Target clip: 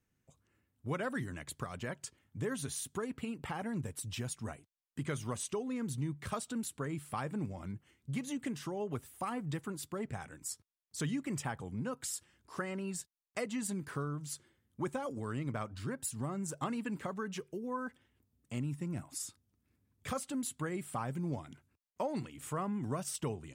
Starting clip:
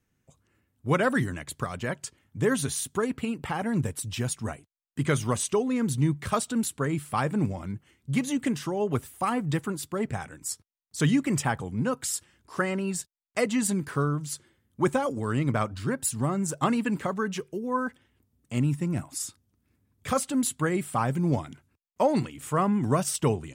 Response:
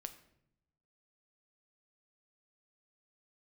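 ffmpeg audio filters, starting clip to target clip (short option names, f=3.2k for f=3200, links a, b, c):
-af "acompressor=threshold=-32dB:ratio=2,volume=-6dB"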